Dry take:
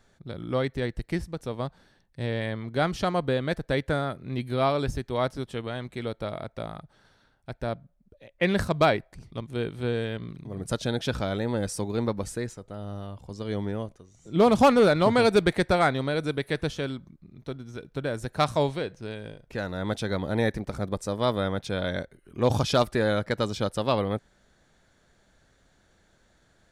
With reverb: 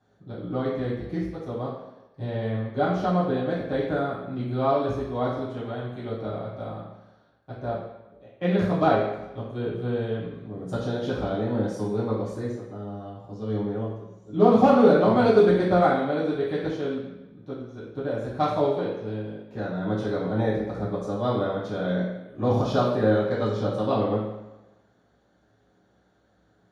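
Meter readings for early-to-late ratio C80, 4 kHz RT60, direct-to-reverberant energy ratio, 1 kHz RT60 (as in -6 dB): 5.0 dB, 0.90 s, -10.0 dB, 1.0 s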